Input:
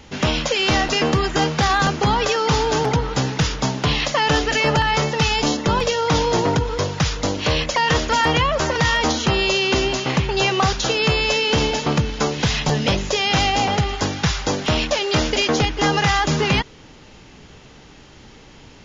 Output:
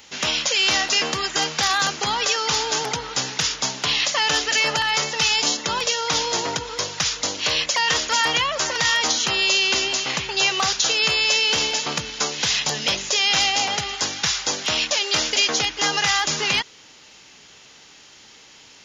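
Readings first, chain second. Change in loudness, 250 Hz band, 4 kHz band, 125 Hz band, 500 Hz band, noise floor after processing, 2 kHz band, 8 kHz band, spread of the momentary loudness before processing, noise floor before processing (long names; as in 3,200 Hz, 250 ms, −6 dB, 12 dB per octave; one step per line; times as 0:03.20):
−0.5 dB, −12.5 dB, +3.0 dB, −16.5 dB, −9.0 dB, −48 dBFS, 0.0 dB, can't be measured, 4 LU, −45 dBFS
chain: spectral tilt +4 dB per octave
level −4.5 dB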